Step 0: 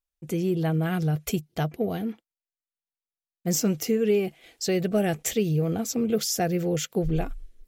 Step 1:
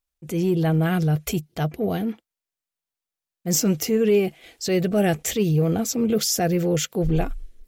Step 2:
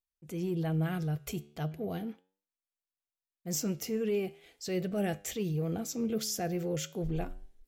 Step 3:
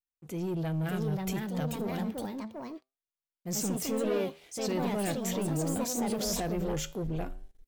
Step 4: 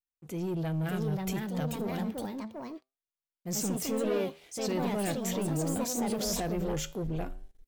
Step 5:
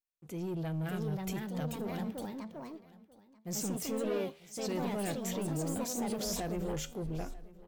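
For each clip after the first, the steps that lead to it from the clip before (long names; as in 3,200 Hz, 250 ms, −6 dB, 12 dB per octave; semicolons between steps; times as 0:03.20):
parametric band 63 Hz +6.5 dB 0.34 octaves; transient designer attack −6 dB, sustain 0 dB; level +5 dB
flanger 0.39 Hz, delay 9.6 ms, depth 4.9 ms, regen +85%; level −7.5 dB
leveller curve on the samples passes 2; delay with pitch and tempo change per echo 639 ms, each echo +3 semitones, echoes 2; level −5 dB
no processing that can be heard
single-tap delay 939 ms −20.5 dB; level −4 dB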